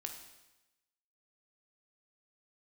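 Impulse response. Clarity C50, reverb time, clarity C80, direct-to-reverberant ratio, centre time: 6.5 dB, 1.0 s, 9.0 dB, 3.5 dB, 25 ms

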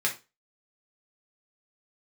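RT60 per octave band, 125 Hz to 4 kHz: 0.30, 0.30, 0.30, 0.25, 0.25, 0.25 s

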